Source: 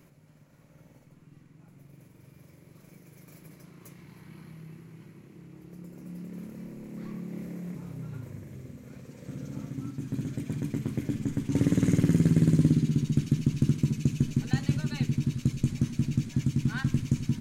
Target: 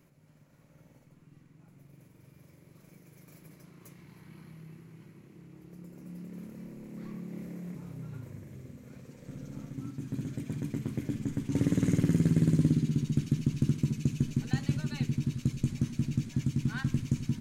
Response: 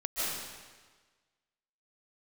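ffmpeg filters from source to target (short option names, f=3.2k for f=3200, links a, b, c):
-filter_complex "[0:a]asettb=1/sr,asplit=3[a][b][c];[a]atrim=end=9.154[d];[b]atrim=start=9.15:end=9.78,asetpts=PTS-STARTPTS,afade=t=in:d=0.004:c=qsin,afade=t=out:st=0.626:d=0.004:c=qsin,aeval=exprs='if(lt(val(0),0),0.708*val(0),val(0))':c=same[e];[c]atrim=start=9.776[f];[d][e]acrossfade=d=0.004:c1=hsin:c2=qsin[g];[g][f]acrossfade=d=0.004:c1=qsin:c2=hsin,dynaudnorm=f=120:g=3:m=3dB,volume=-6dB"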